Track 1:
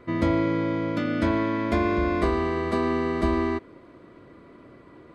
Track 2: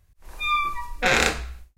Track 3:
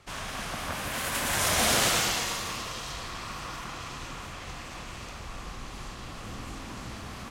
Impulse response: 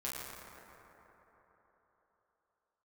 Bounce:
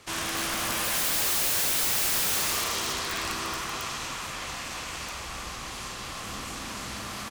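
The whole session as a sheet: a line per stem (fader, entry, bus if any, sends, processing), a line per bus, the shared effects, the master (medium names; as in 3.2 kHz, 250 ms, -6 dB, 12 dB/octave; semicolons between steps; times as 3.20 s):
-10.5 dB, 0.00 s, no send, echo send -6.5 dB, Chebyshev low-pass 1.8 kHz, order 8; hard clipper -28.5 dBFS, distortion -6 dB; hum notches 50/100/150/200/250/300/350 Hz
-17.0 dB, 2.05 s, no send, no echo send, high-pass 930 Hz 24 dB/octave
+2.0 dB, 0.00 s, send -8.5 dB, echo send -10.5 dB, tilt EQ +2 dB/octave; de-hum 180 Hz, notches 29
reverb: on, RT60 4.0 s, pre-delay 7 ms
echo: delay 269 ms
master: integer overflow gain 21 dB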